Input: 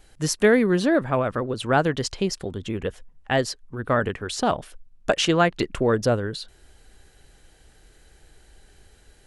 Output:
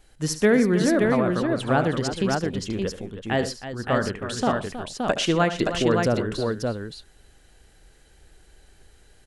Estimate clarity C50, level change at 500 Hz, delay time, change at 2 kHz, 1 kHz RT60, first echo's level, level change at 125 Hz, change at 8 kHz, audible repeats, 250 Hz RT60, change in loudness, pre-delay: no reverb, -0.5 dB, 72 ms, -1.0 dB, no reverb, -12.0 dB, +1.0 dB, -1.0 dB, 4, no reverb, -0.5 dB, no reverb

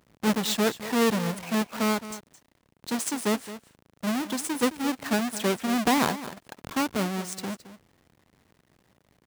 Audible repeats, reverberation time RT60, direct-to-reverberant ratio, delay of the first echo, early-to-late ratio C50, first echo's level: 1, no reverb, no reverb, 217 ms, no reverb, -14.5 dB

